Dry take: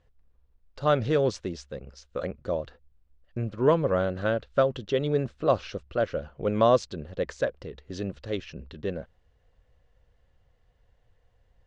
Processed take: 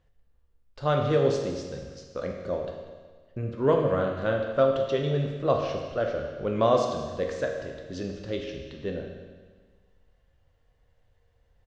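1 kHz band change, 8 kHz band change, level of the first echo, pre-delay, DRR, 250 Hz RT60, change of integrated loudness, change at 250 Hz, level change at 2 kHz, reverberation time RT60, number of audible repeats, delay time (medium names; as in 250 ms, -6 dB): 0.0 dB, no reading, -16.5 dB, 11 ms, 1.5 dB, 1.6 s, 0.0 dB, -0.5 dB, -0.5 dB, 1.5 s, 1, 191 ms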